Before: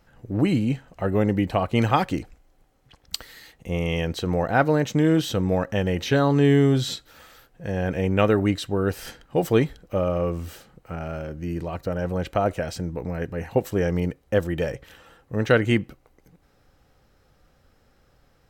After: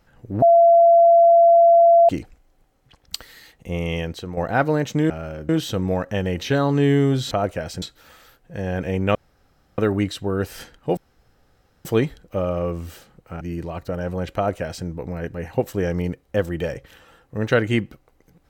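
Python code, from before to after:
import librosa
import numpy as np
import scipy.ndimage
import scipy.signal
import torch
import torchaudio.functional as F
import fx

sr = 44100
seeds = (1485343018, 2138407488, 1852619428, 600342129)

y = fx.edit(x, sr, fx.bleep(start_s=0.42, length_s=1.67, hz=679.0, db=-9.0),
    fx.fade_out_to(start_s=3.95, length_s=0.42, floor_db=-10.0),
    fx.insert_room_tone(at_s=8.25, length_s=0.63),
    fx.insert_room_tone(at_s=9.44, length_s=0.88),
    fx.move(start_s=11.0, length_s=0.39, to_s=5.1),
    fx.duplicate(start_s=12.33, length_s=0.51, to_s=6.92), tone=tone)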